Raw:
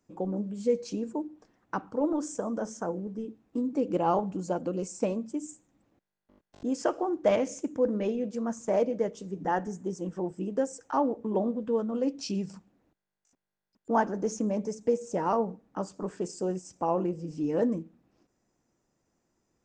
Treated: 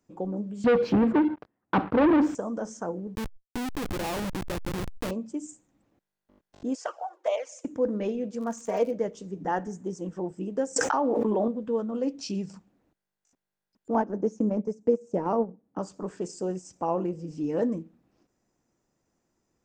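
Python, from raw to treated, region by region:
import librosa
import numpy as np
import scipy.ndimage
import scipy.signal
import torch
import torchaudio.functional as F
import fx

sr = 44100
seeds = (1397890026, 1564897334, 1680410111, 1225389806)

y = fx.chain(x, sr, fx.leveller(passes=5),
    fx.highpass(hz=51.0, slope=12),
    fx.air_absorb(metres=420.0), at=(0.64, 2.35))
y = fx.chain(y, sr, fx.cheby1_bandstop(low_hz=1300.0, high_hz=5600.0, order=3),
    fx.schmitt(flips_db=-31.5),
    fx.pre_swell(db_per_s=54.0), at=(3.15, 5.11))
y = fx.chain(y, sr, fx.steep_highpass(hz=510.0, slope=36),
    fx.env_flanger(rest_ms=3.4, full_db=-20.5), at=(6.75, 7.65))
y = fx.peak_eq(y, sr, hz=71.0, db=-15.0, octaves=2.9, at=(8.4, 8.91), fade=0.02)
y = fx.comb(y, sr, ms=4.3, depth=0.82, at=(8.4, 8.91), fade=0.02)
y = fx.dmg_crackle(y, sr, seeds[0], per_s=65.0, level_db=-38.0, at=(8.4, 8.91), fade=0.02)
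y = fx.chain(y, sr, fx.highpass(hz=360.0, slope=6),
    fx.high_shelf(hz=4600.0, db=-5.0),
    fx.env_flatten(amount_pct=100), at=(10.76, 11.48))
y = fx.chain(y, sr, fx.highpass(hz=220.0, slope=6),
    fx.tilt_shelf(db=8.0, hz=710.0),
    fx.transient(attack_db=1, sustain_db=-9), at=(13.94, 15.79))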